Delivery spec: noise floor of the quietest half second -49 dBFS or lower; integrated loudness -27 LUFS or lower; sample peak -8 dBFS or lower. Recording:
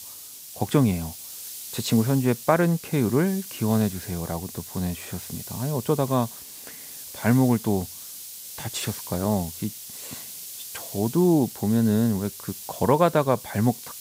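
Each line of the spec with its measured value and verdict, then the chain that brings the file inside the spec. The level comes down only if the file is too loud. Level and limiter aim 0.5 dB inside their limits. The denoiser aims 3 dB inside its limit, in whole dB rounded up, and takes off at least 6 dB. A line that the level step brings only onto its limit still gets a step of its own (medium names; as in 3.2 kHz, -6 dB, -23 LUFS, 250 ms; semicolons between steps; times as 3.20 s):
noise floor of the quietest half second -42 dBFS: fail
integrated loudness -25.0 LUFS: fail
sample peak -5.0 dBFS: fail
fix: noise reduction 8 dB, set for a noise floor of -42 dBFS; trim -2.5 dB; peak limiter -8.5 dBFS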